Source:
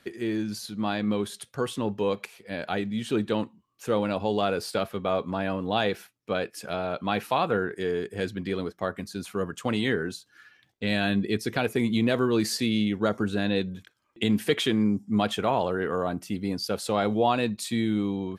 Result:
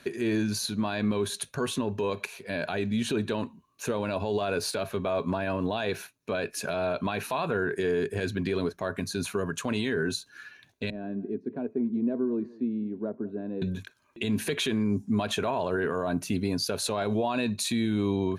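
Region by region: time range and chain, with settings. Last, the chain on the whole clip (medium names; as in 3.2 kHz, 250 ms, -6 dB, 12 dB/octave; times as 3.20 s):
10.90–13.62 s: ladder band-pass 310 Hz, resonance 30% + delay 194 ms -21 dB
whole clip: rippled EQ curve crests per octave 1.5, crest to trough 7 dB; compression 2:1, threshold -28 dBFS; peak limiter -24 dBFS; trim +5.5 dB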